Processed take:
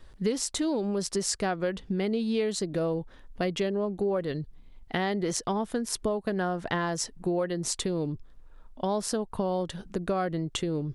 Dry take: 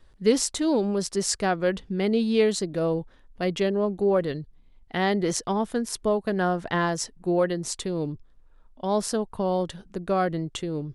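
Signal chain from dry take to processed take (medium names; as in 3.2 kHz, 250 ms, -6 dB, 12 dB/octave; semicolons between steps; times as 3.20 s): compression 4:1, threshold -32 dBFS, peak gain reduction 14.5 dB; trim +5 dB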